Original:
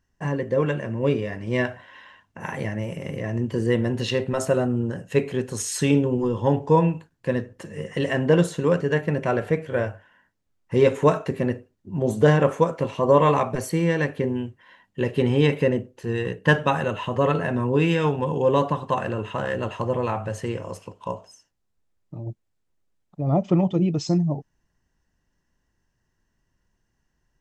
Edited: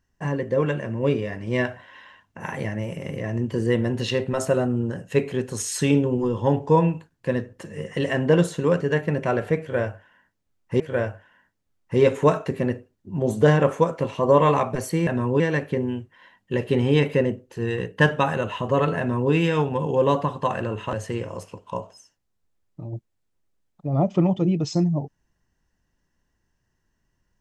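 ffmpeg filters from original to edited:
-filter_complex "[0:a]asplit=5[s0][s1][s2][s3][s4];[s0]atrim=end=10.802[s5];[s1]atrim=start=9.598:end=13.872[s6];[s2]atrim=start=17.458:end=17.792[s7];[s3]atrim=start=13.868:end=19.402[s8];[s4]atrim=start=20.268[s9];[s5][s6]acrossfade=d=0.004:c1=hsin:c2=hsin[s10];[s10][s7]acrossfade=d=0.004:c1=hsin:c2=hsin[s11];[s11][s8]acrossfade=d=0.004:c1=hsin:c2=hsin[s12];[s12][s9]acrossfade=d=0.004:c1=hsin:c2=hsin"

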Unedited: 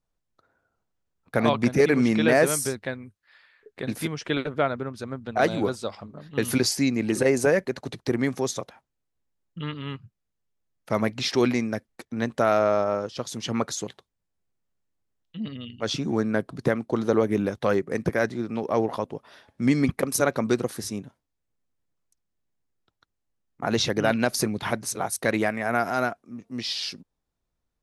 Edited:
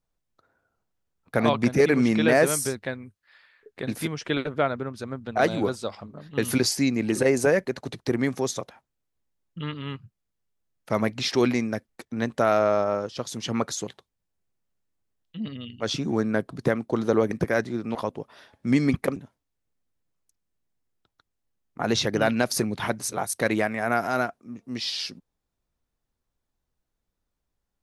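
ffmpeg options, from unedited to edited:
-filter_complex "[0:a]asplit=4[s0][s1][s2][s3];[s0]atrim=end=17.312[s4];[s1]atrim=start=17.958:end=18.602[s5];[s2]atrim=start=18.898:end=20.112[s6];[s3]atrim=start=20.988[s7];[s4][s5]acrossfade=d=0.004:c1=hsin:c2=hsin[s8];[s8][s6]acrossfade=d=0.004:c1=hsin:c2=hsin[s9];[s9][s7]acrossfade=d=0.004:c1=hsin:c2=hsin"

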